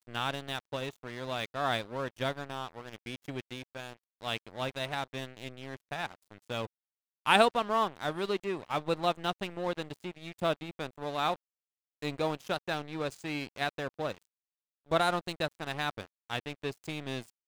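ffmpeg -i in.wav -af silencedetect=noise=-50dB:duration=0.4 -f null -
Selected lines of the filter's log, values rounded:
silence_start: 6.67
silence_end: 7.26 | silence_duration: 0.59
silence_start: 11.36
silence_end: 12.02 | silence_duration: 0.67
silence_start: 14.25
silence_end: 14.88 | silence_duration: 0.63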